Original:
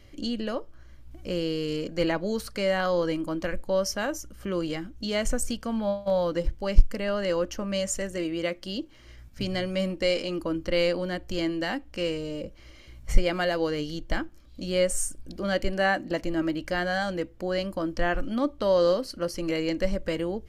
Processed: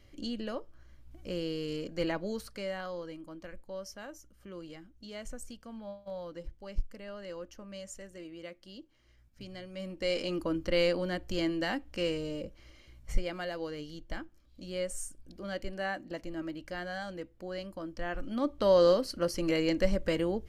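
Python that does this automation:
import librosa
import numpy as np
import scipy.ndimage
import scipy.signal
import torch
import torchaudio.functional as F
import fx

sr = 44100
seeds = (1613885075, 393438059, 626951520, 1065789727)

y = fx.gain(x, sr, db=fx.line((2.24, -6.5), (3.08, -16.0), (9.69, -16.0), (10.24, -3.0), (12.26, -3.0), (13.37, -11.0), (18.04, -11.0), (18.66, -1.0)))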